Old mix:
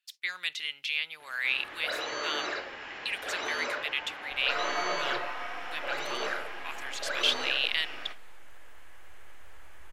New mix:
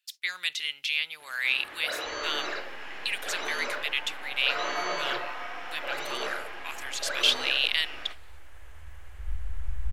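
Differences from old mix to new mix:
speech: add high shelf 3700 Hz +8 dB; second sound: entry -2.25 s

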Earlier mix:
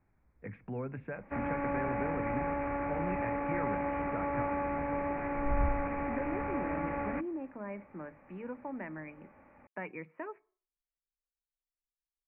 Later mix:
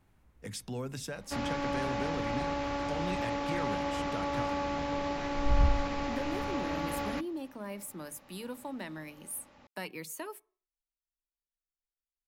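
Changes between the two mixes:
second sound +5.0 dB; master: remove Chebyshev low-pass 2400 Hz, order 6

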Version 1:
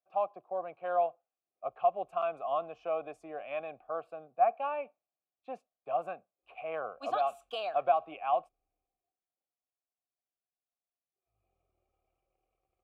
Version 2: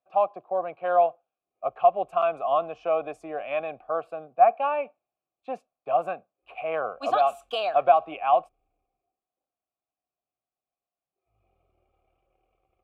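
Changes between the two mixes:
speech +8.5 dB; background +10.0 dB

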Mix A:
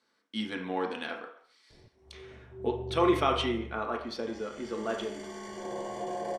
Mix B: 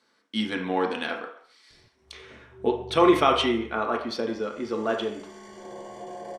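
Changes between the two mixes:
speech +6.5 dB; background -3.5 dB

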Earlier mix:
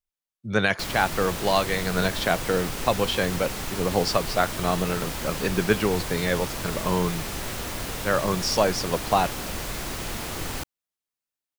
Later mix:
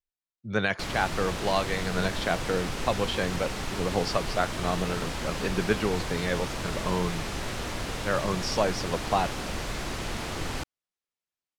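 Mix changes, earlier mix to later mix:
speech -4.0 dB; master: add air absorption 53 m

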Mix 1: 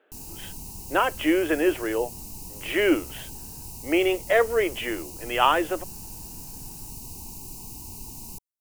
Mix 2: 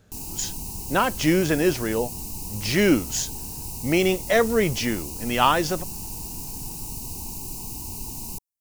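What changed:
speech: remove Chebyshev band-pass 310–3100 Hz, order 4; background +5.5 dB

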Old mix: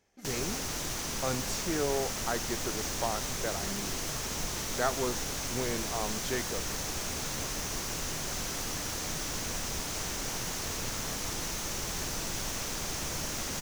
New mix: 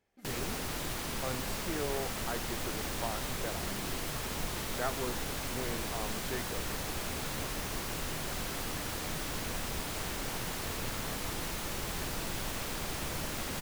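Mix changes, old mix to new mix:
speech -5.5 dB; master: add bell 6100 Hz -10.5 dB 0.57 oct

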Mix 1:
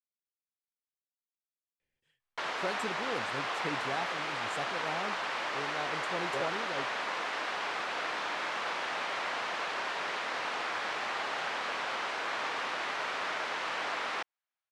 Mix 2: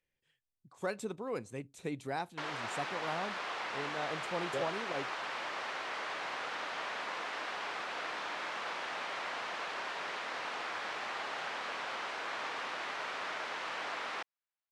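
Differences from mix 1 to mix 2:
speech: entry -1.80 s; background -4.5 dB

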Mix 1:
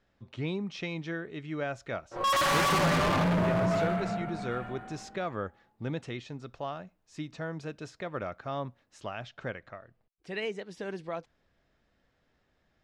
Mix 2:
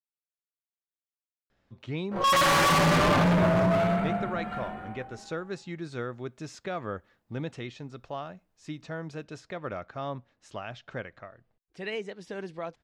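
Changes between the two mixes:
speech: entry +1.50 s; background +4.0 dB

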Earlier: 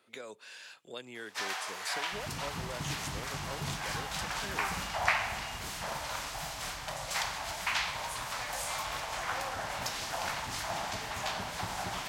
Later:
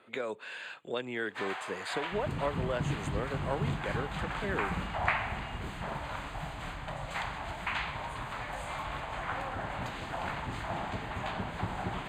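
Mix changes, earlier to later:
speech +10.0 dB; second sound +6.5 dB; master: add running mean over 8 samples

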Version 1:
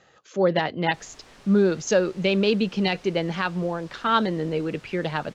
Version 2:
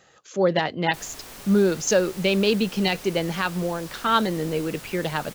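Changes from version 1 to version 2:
background +6.5 dB; master: remove air absorption 89 m

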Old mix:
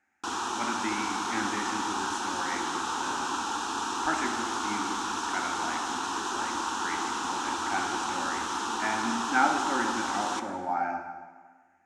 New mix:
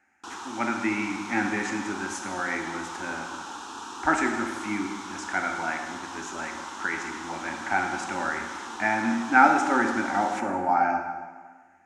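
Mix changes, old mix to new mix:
speech +7.0 dB; background -7.0 dB

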